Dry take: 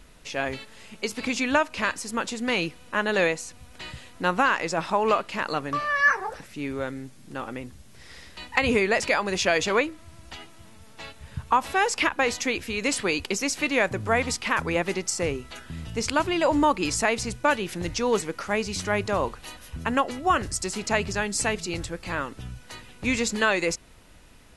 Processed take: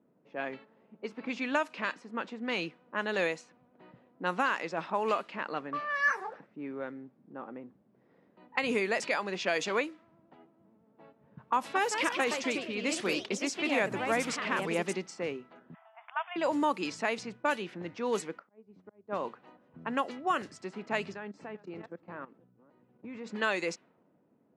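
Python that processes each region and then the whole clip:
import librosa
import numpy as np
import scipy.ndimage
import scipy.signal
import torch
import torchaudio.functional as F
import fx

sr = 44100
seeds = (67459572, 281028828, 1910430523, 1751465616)

y = fx.chain(x, sr, fx.low_shelf(hz=290.0, db=5.0),
    fx.echo_pitch(ms=190, semitones=2, count=3, db_per_echo=-6.0), at=(11.56, 15.13))
y = fx.chain(y, sr, fx.brickwall_bandpass(low_hz=640.0, high_hz=3600.0),
    fx.air_absorb(metres=89.0),
    fx.band_squash(depth_pct=40), at=(15.74, 16.36))
y = fx.chain(y, sr, fx.auto_swell(attack_ms=221.0),
    fx.upward_expand(threshold_db=-36.0, expansion=2.5), at=(18.39, 19.25))
y = fx.chain(y, sr, fx.reverse_delay(ms=260, wet_db=-12.5),
    fx.lowpass(hz=8100.0, slope=24),
    fx.level_steps(step_db=16), at=(21.14, 23.26))
y = fx.env_lowpass(y, sr, base_hz=490.0, full_db=-18.0)
y = scipy.signal.sosfilt(scipy.signal.butter(4, 170.0, 'highpass', fs=sr, output='sos'), y)
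y = F.gain(torch.from_numpy(y), -7.5).numpy()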